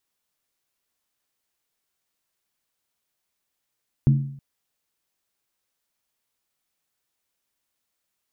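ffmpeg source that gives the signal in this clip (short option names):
-f lavfi -i "aevalsrc='0.282*pow(10,-3*t/0.64)*sin(2*PI*139*t)+0.1*pow(10,-3*t/0.507)*sin(2*PI*221.6*t)+0.0355*pow(10,-3*t/0.438)*sin(2*PI*296.9*t)+0.0126*pow(10,-3*t/0.422)*sin(2*PI*319.1*t)+0.00447*pow(10,-3*t/0.393)*sin(2*PI*368.8*t)':d=0.32:s=44100"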